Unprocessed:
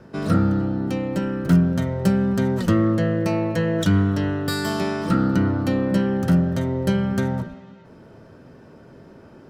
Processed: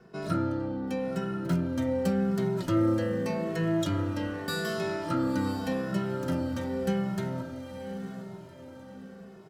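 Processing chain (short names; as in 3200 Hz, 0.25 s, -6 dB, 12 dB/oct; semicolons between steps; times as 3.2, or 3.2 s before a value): low shelf 200 Hz -6.5 dB; resonator 260 Hz, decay 0.94 s, mix 40%; diffused feedback echo 0.93 s, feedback 42%, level -9.5 dB; reverb RT60 0.25 s, pre-delay 17 ms, DRR 12 dB; endless flanger 2.3 ms -0.86 Hz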